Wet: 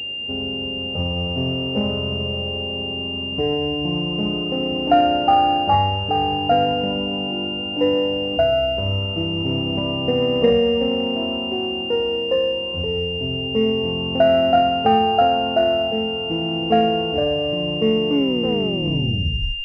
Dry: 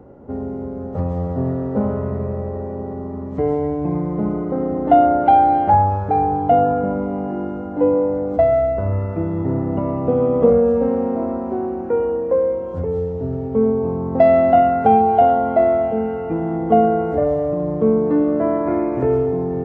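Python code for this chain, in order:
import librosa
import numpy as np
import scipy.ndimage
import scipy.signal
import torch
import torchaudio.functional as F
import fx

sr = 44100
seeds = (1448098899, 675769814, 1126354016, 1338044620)

y = fx.tape_stop_end(x, sr, length_s=1.54)
y = fx.pwm(y, sr, carrier_hz=2800.0)
y = y * librosa.db_to_amplitude(-2.5)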